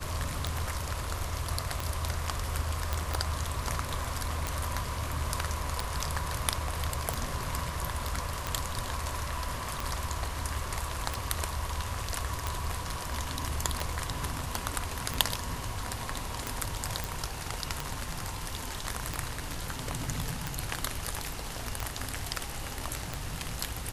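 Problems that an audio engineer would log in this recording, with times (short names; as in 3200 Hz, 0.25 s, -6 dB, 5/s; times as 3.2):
tick 45 rpm -15 dBFS
2.93 pop -14 dBFS
17.04 pop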